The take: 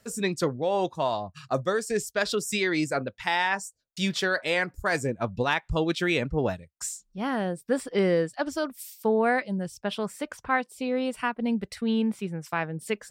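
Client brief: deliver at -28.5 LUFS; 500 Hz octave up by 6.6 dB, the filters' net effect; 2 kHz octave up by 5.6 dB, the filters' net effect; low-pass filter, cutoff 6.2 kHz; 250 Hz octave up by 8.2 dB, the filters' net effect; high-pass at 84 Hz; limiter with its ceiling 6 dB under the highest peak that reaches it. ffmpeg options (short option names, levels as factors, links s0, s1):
-af "highpass=84,lowpass=6200,equalizer=f=250:t=o:g=9,equalizer=f=500:t=o:g=5,equalizer=f=2000:t=o:g=6.5,volume=0.562,alimiter=limit=0.15:level=0:latency=1"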